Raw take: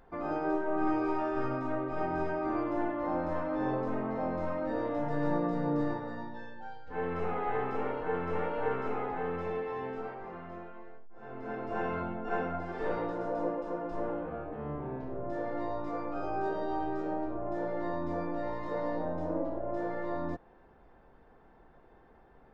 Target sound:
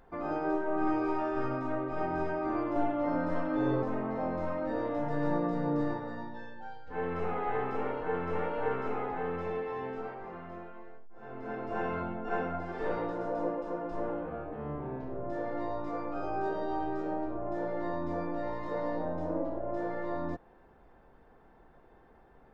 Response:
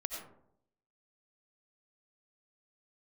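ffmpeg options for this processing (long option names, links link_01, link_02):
-filter_complex "[0:a]asettb=1/sr,asplit=3[link_01][link_02][link_03];[link_01]atrim=end=2.754[link_04];[link_02]atrim=start=2.75:end=3.83,asetpts=PTS-STARTPTS,afade=type=in:duration=0.004:curve=qsin,afade=type=out:start_time=1.076:duration=0.004:curve=qsin,aecho=1:1:7.1:0.92,atrim=end_sample=47628[link_05];[link_03]atrim=start=3.826[link_06];[link_04][link_05]acrossfade=duration=0.004:curve1=hsin:curve2=qsin[link_07];[link_07][link_06]acrossfade=duration=0.004:curve1=qsin:curve2=hsin"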